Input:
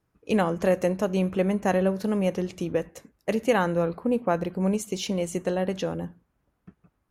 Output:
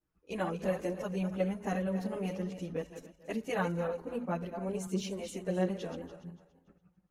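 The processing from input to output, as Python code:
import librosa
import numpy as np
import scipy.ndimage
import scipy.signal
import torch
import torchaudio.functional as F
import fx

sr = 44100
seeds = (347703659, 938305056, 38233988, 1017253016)

y = fx.reverse_delay_fb(x, sr, ms=143, feedback_pct=51, wet_db=-9)
y = fx.chorus_voices(y, sr, voices=6, hz=0.37, base_ms=14, depth_ms=3.8, mix_pct=70)
y = y * librosa.db_to_amplitude(-8.0)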